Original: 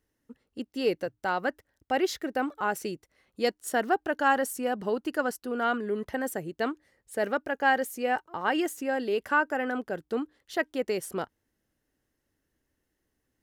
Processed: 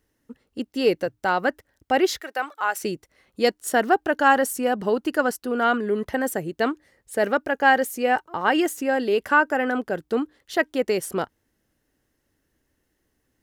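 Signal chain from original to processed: 2.21–2.83 s: high-pass 800 Hz 12 dB/octave; trim +6.5 dB

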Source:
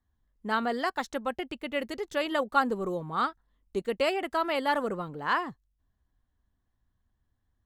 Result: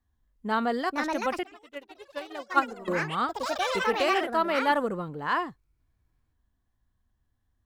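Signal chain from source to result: ever faster or slower copies 592 ms, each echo +5 st, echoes 3; harmonic-percussive split percussive -6 dB; 1.43–2.88 s: upward expansion 2.5:1, over -37 dBFS; trim +3 dB

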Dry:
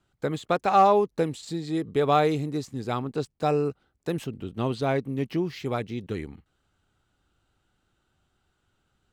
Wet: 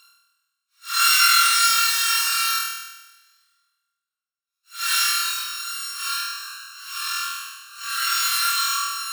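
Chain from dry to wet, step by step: sorted samples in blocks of 32 samples; gate with hold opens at -35 dBFS; treble shelf 3.9 kHz +8 dB; in parallel at 0 dB: compression, threshold -29 dBFS, peak gain reduction 17 dB; on the sum: rippled Chebyshev high-pass 1.1 kHz, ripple 6 dB; Paulstretch 6×, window 0.05 s, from 3.27 s; on a send: flutter echo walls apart 4.2 m, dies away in 1.1 s; on the sum: trim +2.5 dB

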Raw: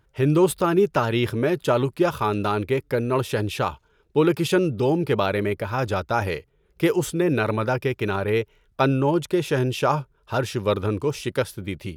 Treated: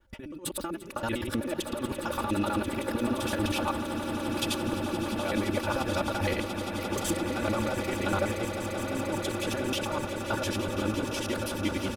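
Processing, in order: time reversed locally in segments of 64 ms; compressor with a negative ratio -25 dBFS, ratio -0.5; comb 3.5 ms, depth 84%; on a send: echo with a slow build-up 173 ms, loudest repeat 8, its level -12 dB; on the sum: trim -7 dB

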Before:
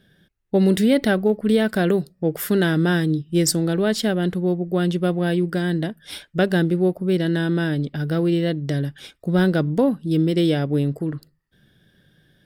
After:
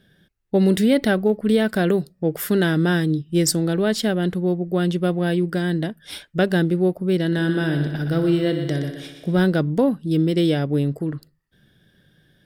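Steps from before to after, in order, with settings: 7.26–9.37 s: multi-head delay 61 ms, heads first and second, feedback 58%, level -11 dB

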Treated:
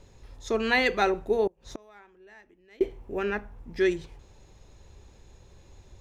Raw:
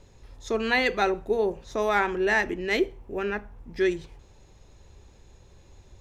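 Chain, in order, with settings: 1.47–2.81 s: inverted gate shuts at -25 dBFS, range -29 dB

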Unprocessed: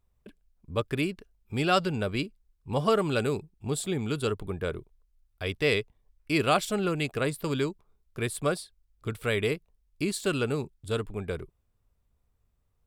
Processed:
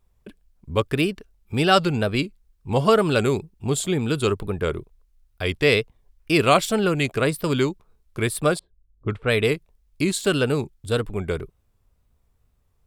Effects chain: wow and flutter 93 cents; 8.59–9.45 s: level-controlled noise filter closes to 340 Hz, open at -23 dBFS; trim +7 dB

